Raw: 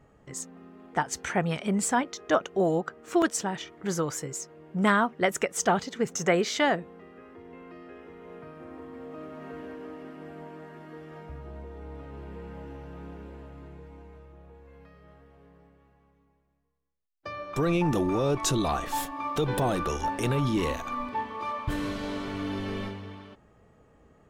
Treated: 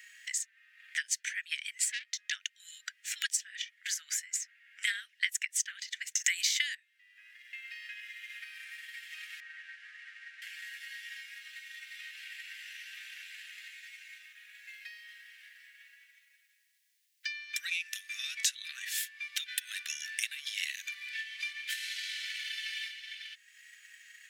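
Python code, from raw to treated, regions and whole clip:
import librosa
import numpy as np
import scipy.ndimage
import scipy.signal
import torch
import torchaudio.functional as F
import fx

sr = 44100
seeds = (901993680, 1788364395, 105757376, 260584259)

y = fx.chain(x, sr, fx.brickwall_highpass(low_hz=170.0),
    fx.transformer_sat(knee_hz=3300.0), at=(1.84, 2.32))
y = fx.chain(y, sr, fx.riaa(side='recording'),
    fx.band_squash(depth_pct=100), at=(6.24, 6.75))
y = fx.chain(y, sr, fx.delta_mod(bps=64000, step_db=-50.5),
    fx.lowpass(hz=1300.0, slope=12), at=(9.4, 10.42))
y = scipy.signal.sosfilt(scipy.signal.butter(12, 1700.0, 'highpass', fs=sr, output='sos'), y)
y = fx.transient(y, sr, attack_db=6, sustain_db=-3)
y = fx.band_squash(y, sr, depth_pct=70)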